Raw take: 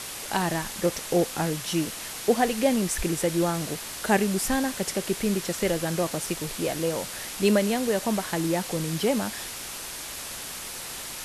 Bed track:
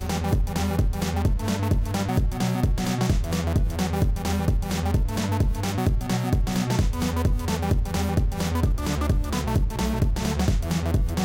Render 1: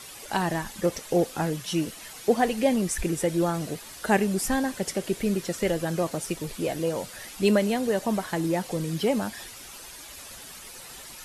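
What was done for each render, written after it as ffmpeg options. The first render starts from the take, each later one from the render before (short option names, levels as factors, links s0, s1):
-af "afftdn=nr=10:nf=-37"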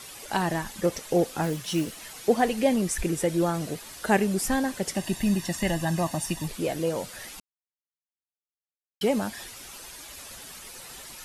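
-filter_complex "[0:a]asettb=1/sr,asplit=3[s0][s1][s2];[s0]atrim=end=1.434[s3];[s1]atrim=start=1.43:end=2.03,asetpts=PTS-STARTPTS,afade=t=in:d=0.004:c=qsin,afade=t=out:st=0.596:d=0.004:c=qsin,acrusher=bits=5:mode=log:mix=0:aa=0.000001[s4];[s2]atrim=start=2.026[s5];[s3][s4]acrossfade=d=0.004:c1=hsin:c2=qsin[s6];[s6][s5]acrossfade=d=0.004:c1=qsin:c2=hsin,asettb=1/sr,asplit=3[s7][s8][s9];[s7]atrim=end=4.954[s10];[s8]atrim=start=4.95:end=6.48,asetpts=PTS-STARTPTS,afade=t=in:d=0.004:c=qsin,afade=t=out:st=1.526:d=0.004:c=qsin,aecho=1:1:1.1:0.84,atrim=end_sample=67473[s11];[s9]atrim=start=6.476[s12];[s10][s11]acrossfade=d=0.004:c1=hsin:c2=qsin[s13];[s13][s12]acrossfade=d=0.004:c1=qsin:c2=hsin,asplit=3[s14][s15][s16];[s14]atrim=end=7.4,asetpts=PTS-STARTPTS,afade=t=out:st=7.396:d=0.004:c=hsin[s17];[s15]atrim=start=7.4:end=9.01,asetpts=PTS-STARTPTS,volume=0[s18];[s16]atrim=start=9.01,asetpts=PTS-STARTPTS,afade=t=in:d=0.004:c=hsin[s19];[s17][s18][s19]concat=n=3:v=0:a=1"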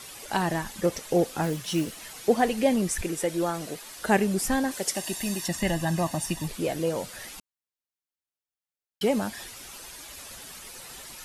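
-filter_complex "[0:a]asettb=1/sr,asplit=3[s0][s1][s2];[s0]atrim=end=3.014[s3];[s1]atrim=start=3.01:end=3.99,asetpts=PTS-STARTPTS,afade=t=in:d=0.004:c=qsin,afade=t=out:st=0.976:d=0.004:c=qsin,equalizer=f=68:t=o:w=2.9:g=-12.5[s4];[s2]atrim=start=3.986[s5];[s3][s4]acrossfade=d=0.004:c1=hsin:c2=qsin[s6];[s6][s5]acrossfade=d=0.004:c1=qsin:c2=hsin,asettb=1/sr,asplit=3[s7][s8][s9];[s7]atrim=end=4.714[s10];[s8]atrim=start=4.71:end=5.48,asetpts=PTS-STARTPTS,afade=t=in:d=0.004:c=qsin,afade=t=out:st=0.766:d=0.004:c=qsin,bass=f=250:g=-11,treble=f=4000:g=6[s11];[s9]atrim=start=5.476[s12];[s10][s11]acrossfade=d=0.004:c1=hsin:c2=qsin[s13];[s13][s12]acrossfade=d=0.004:c1=qsin:c2=hsin"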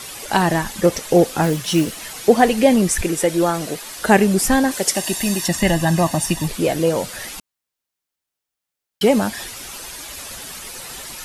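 -af "volume=2.99,alimiter=limit=0.891:level=0:latency=1"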